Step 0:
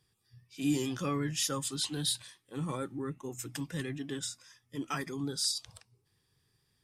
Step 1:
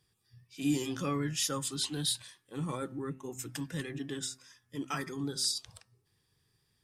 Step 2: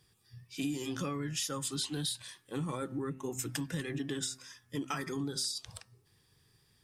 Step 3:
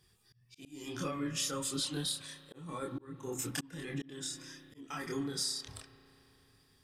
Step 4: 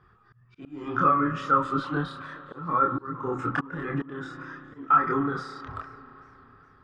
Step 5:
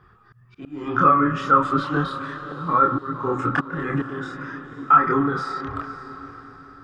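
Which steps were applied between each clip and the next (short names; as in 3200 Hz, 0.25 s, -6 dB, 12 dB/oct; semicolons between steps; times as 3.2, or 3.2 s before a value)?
de-hum 130.8 Hz, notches 14
compressor 12:1, threshold -38 dBFS, peak gain reduction 14 dB; gain +6 dB
chorus voices 6, 0.58 Hz, delay 27 ms, depth 2.9 ms; spring tank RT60 3.7 s, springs 33 ms, chirp 65 ms, DRR 12.5 dB; auto swell 0.363 s; gain +3 dB
synth low-pass 1300 Hz, resonance Q 7.5; warbling echo 0.417 s, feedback 44%, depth 154 cents, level -23.5 dB; gain +9 dB
diffused feedback echo 0.54 s, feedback 44%, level -14 dB; gain +5.5 dB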